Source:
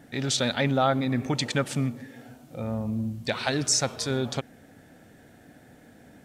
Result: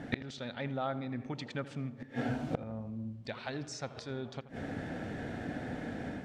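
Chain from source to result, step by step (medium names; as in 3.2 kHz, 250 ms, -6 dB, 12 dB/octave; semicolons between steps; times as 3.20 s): Bessel low-pass 3.2 kHz, order 2; level rider gain up to 5 dB; inverted gate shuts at -27 dBFS, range -25 dB; filtered feedback delay 81 ms, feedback 58%, low-pass 2.2 kHz, level -15 dB; trim +8 dB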